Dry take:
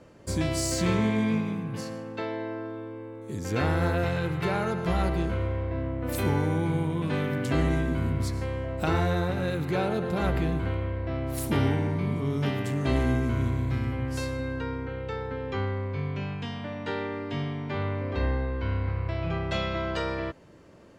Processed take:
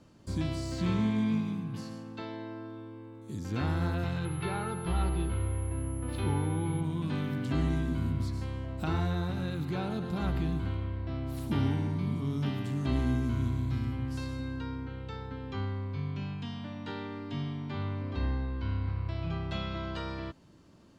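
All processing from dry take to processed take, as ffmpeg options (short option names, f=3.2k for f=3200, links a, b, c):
-filter_complex "[0:a]asettb=1/sr,asplit=3[a][b][c];[a]atrim=end=4.254[d];[b]atrim=start=4.25:end=6.81,asetpts=PTS-STARTPTS,afade=t=in:d=0.004:c=qsin,afade=t=out:st=2.556:d=0.004:c=qsin,highshelf=f=5.3k:t=q:w=1.5:g=-9.5,aecho=1:1:2.3:0.44,atrim=end_sample=112896,aeval=exprs='val(0)+0.02*sin(2*PI*11000*n/s)':c=same[e];[c]atrim=start=6.806[f];[d][e]acrossfade=d=0.004:c1=hsin:c2=qsin[g];[g][f]acrossfade=d=0.004:c1=qsin:c2=hsin,acrossover=split=3300[h][i];[i]acompressor=threshold=-50dB:ratio=4:attack=1:release=60[j];[h][j]amix=inputs=2:normalize=0,equalizer=f=250:t=o:w=1:g=3,equalizer=f=500:t=o:w=1:g=-10,equalizer=f=2k:t=o:w=1:g=-7,equalizer=f=4k:t=o:w=1:g=4,volume=-3.5dB"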